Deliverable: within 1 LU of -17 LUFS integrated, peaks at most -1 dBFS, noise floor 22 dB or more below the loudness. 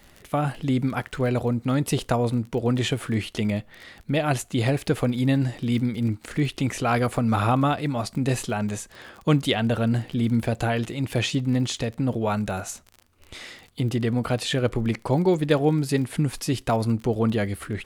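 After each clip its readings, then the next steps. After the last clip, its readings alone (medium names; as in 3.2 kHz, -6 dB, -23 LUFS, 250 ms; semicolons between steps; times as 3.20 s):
tick rate 28 per s; loudness -24.5 LUFS; peak level -7.5 dBFS; loudness target -17.0 LUFS
-> de-click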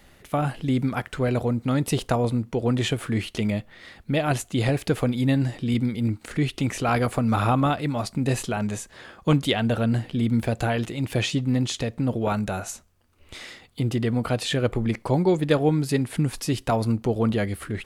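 tick rate 0.50 per s; loudness -25.0 LUFS; peak level -7.5 dBFS; loudness target -17.0 LUFS
-> trim +8 dB; peak limiter -1 dBFS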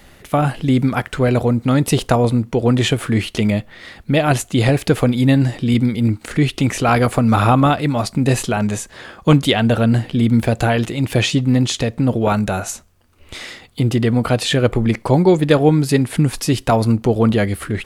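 loudness -17.0 LUFS; peak level -1.0 dBFS; noise floor -47 dBFS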